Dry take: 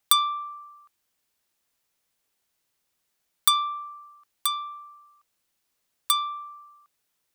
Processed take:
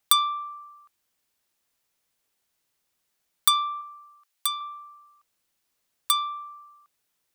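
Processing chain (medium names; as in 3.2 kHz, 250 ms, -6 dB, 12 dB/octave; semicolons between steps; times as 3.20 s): 3.81–4.61 s: high-pass 1.1 kHz 6 dB/octave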